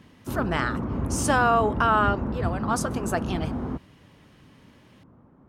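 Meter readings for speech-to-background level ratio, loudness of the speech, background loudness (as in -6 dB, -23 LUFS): 4.5 dB, -25.5 LUFS, -30.0 LUFS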